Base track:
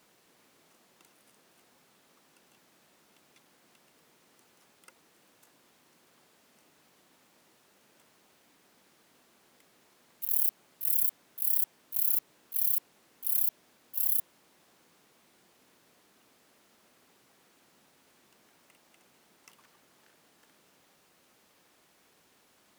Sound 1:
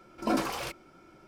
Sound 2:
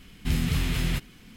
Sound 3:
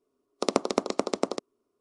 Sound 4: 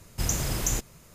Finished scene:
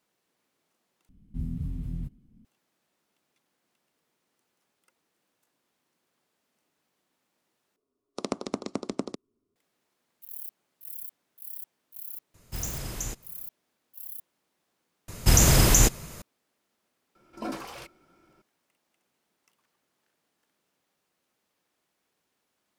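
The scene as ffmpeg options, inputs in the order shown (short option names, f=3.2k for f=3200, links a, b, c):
-filter_complex "[4:a]asplit=2[a][b];[0:a]volume=-13dB[c];[2:a]firequalizer=gain_entry='entry(250,0);entry(380,-12);entry(1700,-27);entry(2700,-29);entry(4900,-26);entry(9600,-20)':delay=0.05:min_phase=1[d];[3:a]asubboost=boost=11:cutoff=250[e];[b]alimiter=level_in=16dB:limit=-1dB:release=50:level=0:latency=1[f];[c]asplit=4[g][h][i][j];[g]atrim=end=1.094[k];[d]atrim=end=1.36,asetpts=PTS-STARTPTS,volume=-7dB[l];[h]atrim=start=2.446:end=7.764[m];[e]atrim=end=1.8,asetpts=PTS-STARTPTS,volume=-7dB[n];[i]atrim=start=9.556:end=15.084[o];[f]atrim=end=1.14,asetpts=PTS-STARTPTS,volume=-5.5dB[p];[j]atrim=start=16.216[q];[a]atrim=end=1.14,asetpts=PTS-STARTPTS,volume=-7dB,afade=t=in:d=0.004:c=hsin,afade=t=out:st=1.136:d=0.004:c=hsin,adelay=12340[r];[1:a]atrim=end=1.27,asetpts=PTS-STARTPTS,volume=-7dB,afade=t=in:d=0.004:c=hsin,afade=t=out:st=1.266:d=0.004:c=hsin,adelay=17150[s];[k][l]acrossfade=d=0.004:c1=hsin:c2=hsin[t];[t][m]acrossfade=d=0.004:c1=hsin:c2=hsin[u];[u][n]acrossfade=d=0.004:c1=hsin:c2=hsin[v];[v][o]acrossfade=d=0.004:c1=hsin:c2=hsin[w];[w][p]acrossfade=d=0.004:c1=hsin:c2=hsin[x];[x][q]acrossfade=d=0.004:c1=hsin:c2=hsin[y];[y][r][s]amix=inputs=3:normalize=0"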